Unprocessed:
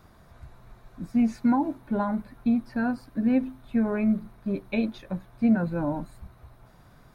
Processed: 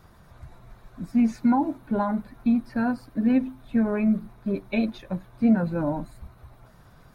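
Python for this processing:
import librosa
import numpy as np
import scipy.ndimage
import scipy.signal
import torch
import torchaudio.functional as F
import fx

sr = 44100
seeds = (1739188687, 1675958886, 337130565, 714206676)

y = fx.spec_quant(x, sr, step_db=15)
y = F.gain(torch.from_numpy(y), 2.0).numpy()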